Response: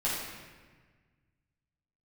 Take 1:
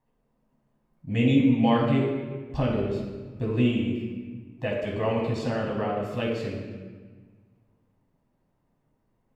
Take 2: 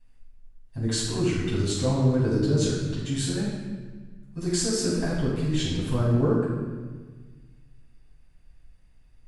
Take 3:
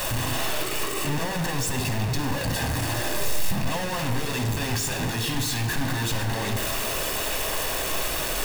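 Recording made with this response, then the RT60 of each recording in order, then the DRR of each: 2; 1.5, 1.5, 1.5 seconds; −2.5, −9.0, 5.0 decibels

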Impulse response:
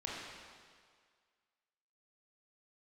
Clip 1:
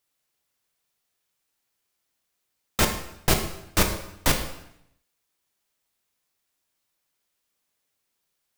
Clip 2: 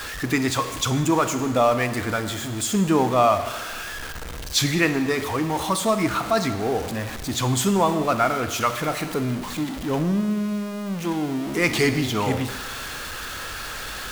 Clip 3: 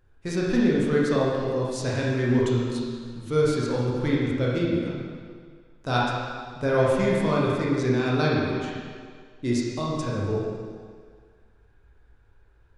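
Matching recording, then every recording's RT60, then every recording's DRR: 3; 0.75, 1.4, 1.9 seconds; 4.5, 9.0, −5.5 decibels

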